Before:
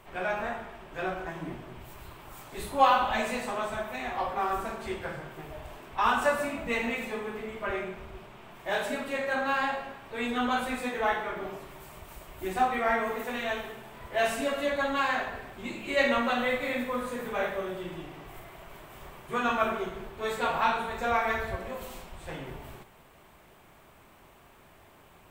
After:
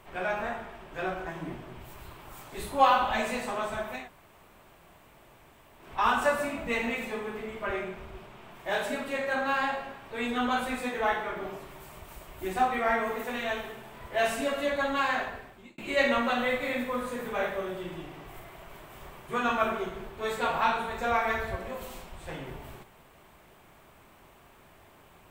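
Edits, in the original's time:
4.02–5.83 room tone, crossfade 0.16 s
15.24–15.78 fade out

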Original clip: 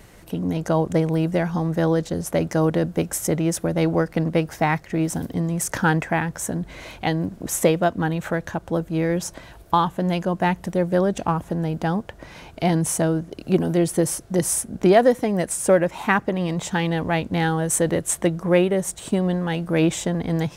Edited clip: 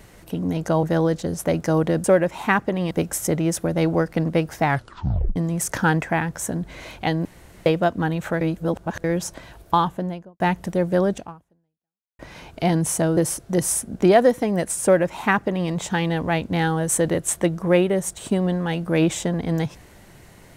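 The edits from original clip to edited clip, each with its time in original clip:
0.83–1.7 cut
4.65 tape stop 0.71 s
7.25–7.66 room tone
8.41–9.04 reverse
9.79–10.4 studio fade out
11.13–12.19 fade out exponential
13.17–13.98 cut
15.64–16.51 copy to 2.91

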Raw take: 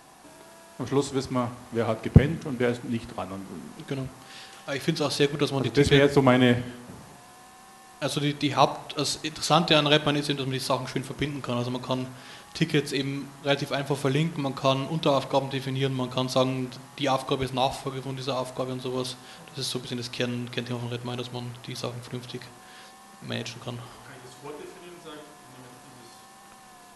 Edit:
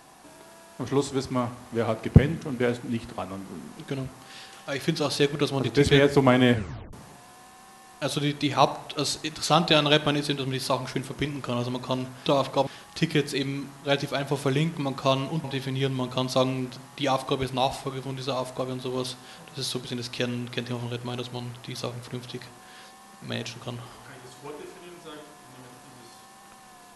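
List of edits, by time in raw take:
6.54 tape stop 0.39 s
15.03–15.44 move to 12.26

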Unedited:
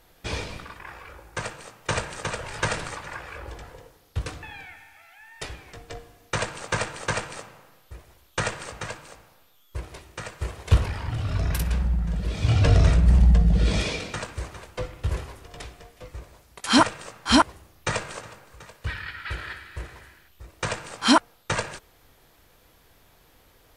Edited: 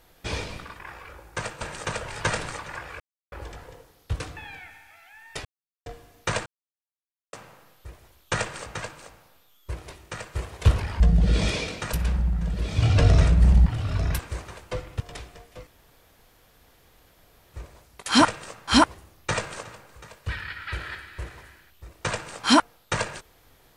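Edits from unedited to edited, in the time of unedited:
1.61–1.99 cut
3.38 insert silence 0.32 s
5.51–5.92 mute
6.52–7.39 mute
11.06–11.59 swap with 13.32–14.25
15.06–15.45 cut
16.12 insert room tone 1.87 s

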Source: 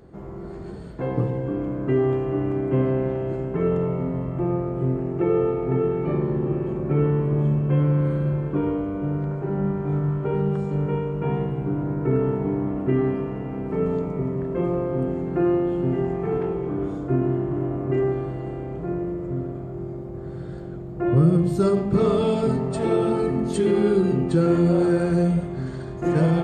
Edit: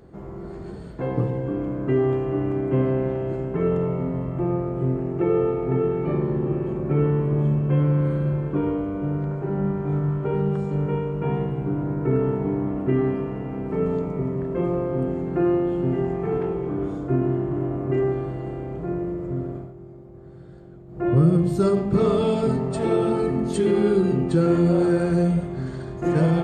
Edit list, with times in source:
19.56–21.05 dip -10 dB, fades 0.18 s

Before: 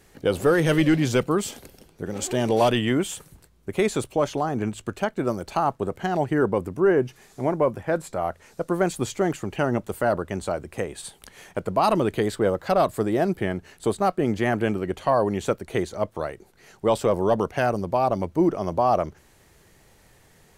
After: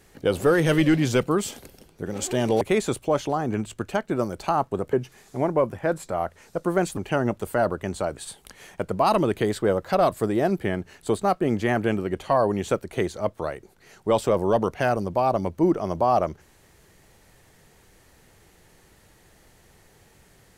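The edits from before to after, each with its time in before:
2.61–3.69 cut
6.01–6.97 cut
9.01–9.44 cut
10.64–10.94 cut

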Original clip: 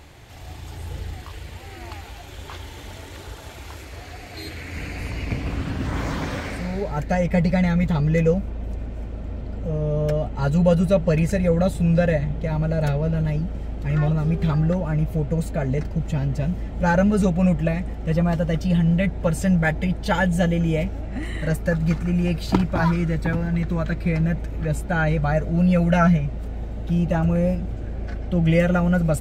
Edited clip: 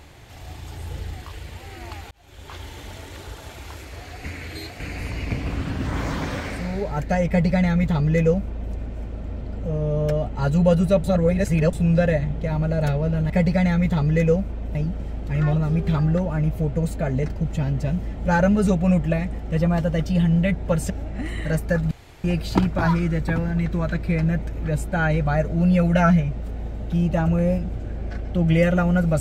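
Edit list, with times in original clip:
2.11–2.63 fade in
4.24–4.8 reverse
7.28–8.73 copy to 13.3
11.04–11.73 reverse
19.45–20.87 cut
21.88–22.21 room tone

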